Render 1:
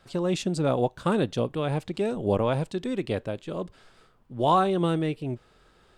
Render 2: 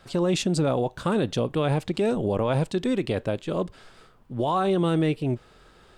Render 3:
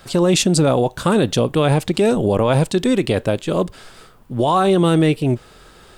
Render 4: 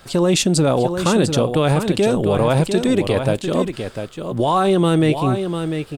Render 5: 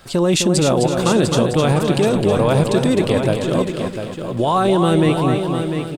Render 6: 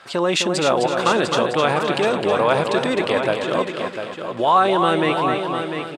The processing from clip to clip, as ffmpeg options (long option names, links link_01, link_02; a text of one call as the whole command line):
ffmpeg -i in.wav -af "alimiter=limit=-21dB:level=0:latency=1:release=42,volume=5.5dB" out.wav
ffmpeg -i in.wav -af "highshelf=frequency=7300:gain=11,volume=8dB" out.wav
ffmpeg -i in.wav -af "aecho=1:1:698:0.422,volume=-1dB" out.wav
ffmpeg -i in.wav -af "aecho=1:1:258|516|774|1032|1290:0.473|0.185|0.072|0.0281|0.0109" out.wav
ffmpeg -i in.wav -af "bandpass=frequency=1500:width_type=q:width=0.72:csg=0,volume=5dB" out.wav